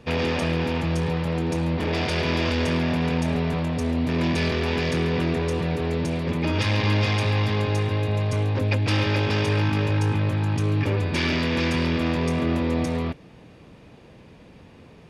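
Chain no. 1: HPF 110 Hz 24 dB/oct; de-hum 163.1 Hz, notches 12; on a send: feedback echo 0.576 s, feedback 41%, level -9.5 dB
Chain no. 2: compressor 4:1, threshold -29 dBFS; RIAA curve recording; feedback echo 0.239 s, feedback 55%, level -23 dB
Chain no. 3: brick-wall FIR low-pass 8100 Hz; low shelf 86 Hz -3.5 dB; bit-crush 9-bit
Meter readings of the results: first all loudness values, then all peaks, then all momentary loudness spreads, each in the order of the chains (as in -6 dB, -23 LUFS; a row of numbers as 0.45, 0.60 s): -25.0, -33.0, -24.5 LUFS; -11.0, -16.5, -11.0 dBFS; 4, 19, 3 LU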